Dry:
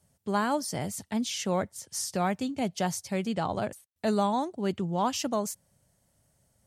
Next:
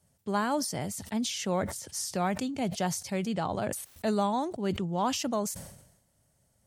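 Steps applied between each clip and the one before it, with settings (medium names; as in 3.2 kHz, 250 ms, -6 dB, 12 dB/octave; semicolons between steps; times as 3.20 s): decay stretcher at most 66 dB/s; trim -1.5 dB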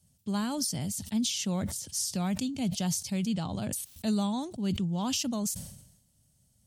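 high-order bell 860 Hz -11.5 dB 3 oct; trim +3 dB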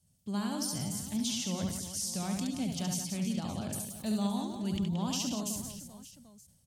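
reverse bouncing-ball echo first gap 70 ms, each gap 1.5×, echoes 5; trim -5 dB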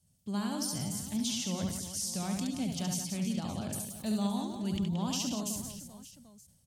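no audible change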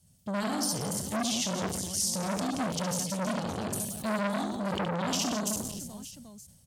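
transformer saturation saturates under 1.7 kHz; trim +7.5 dB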